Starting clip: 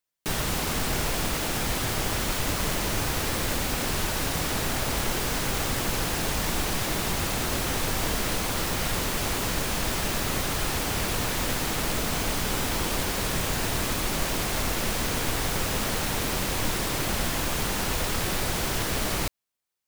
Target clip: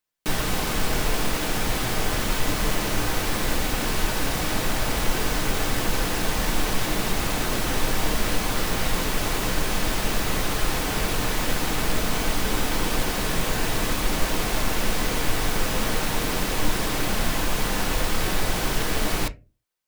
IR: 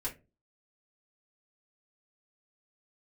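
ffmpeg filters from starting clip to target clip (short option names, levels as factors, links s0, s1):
-filter_complex "[0:a]asplit=2[s0][s1];[1:a]atrim=start_sample=2205,lowpass=5500[s2];[s1][s2]afir=irnorm=-1:irlink=0,volume=0.447[s3];[s0][s3]amix=inputs=2:normalize=0"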